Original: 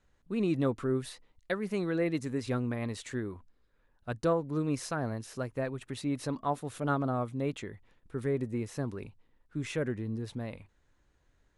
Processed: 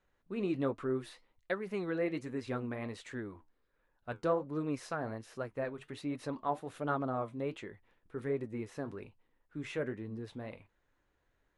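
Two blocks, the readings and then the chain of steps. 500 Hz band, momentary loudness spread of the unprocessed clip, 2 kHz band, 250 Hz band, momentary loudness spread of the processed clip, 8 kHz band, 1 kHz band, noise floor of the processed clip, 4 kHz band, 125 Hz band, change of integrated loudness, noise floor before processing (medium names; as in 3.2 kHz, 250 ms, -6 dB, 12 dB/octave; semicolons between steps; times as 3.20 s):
-3.0 dB, 12 LU, -2.5 dB, -5.0 dB, 13 LU, -10.5 dB, -2.5 dB, -78 dBFS, -6.0 dB, -8.0 dB, -4.0 dB, -71 dBFS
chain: tone controls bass -7 dB, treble -9 dB; flange 1.3 Hz, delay 5.2 ms, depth 6.5 ms, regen -66%; trim +2 dB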